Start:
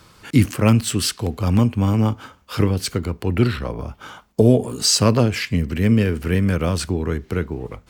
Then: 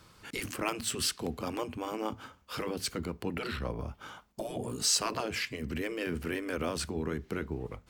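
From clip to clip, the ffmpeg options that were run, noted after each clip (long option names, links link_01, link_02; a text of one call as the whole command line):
ffmpeg -i in.wav -af "afftfilt=real='re*lt(hypot(re,im),0.562)':imag='im*lt(hypot(re,im),0.562)':win_size=1024:overlap=0.75,volume=-8.5dB" out.wav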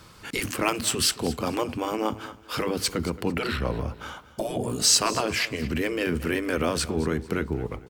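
ffmpeg -i in.wav -af "aecho=1:1:223|446|669:0.141|0.0424|0.0127,volume=8dB" out.wav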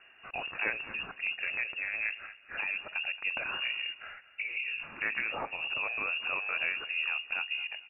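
ffmpeg -i in.wav -af "lowpass=frequency=2500:width_type=q:width=0.5098,lowpass=frequency=2500:width_type=q:width=0.6013,lowpass=frequency=2500:width_type=q:width=0.9,lowpass=frequency=2500:width_type=q:width=2.563,afreqshift=-2900,volume=-7dB" out.wav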